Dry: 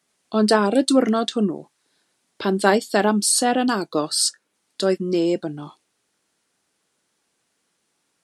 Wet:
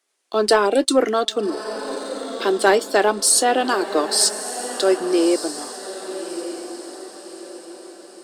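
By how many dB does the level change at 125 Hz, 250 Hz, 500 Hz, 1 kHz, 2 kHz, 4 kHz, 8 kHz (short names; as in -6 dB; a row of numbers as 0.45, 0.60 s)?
under -10 dB, -3.0 dB, +3.0 dB, +2.5 dB, +3.0 dB, +2.5 dB, +4.0 dB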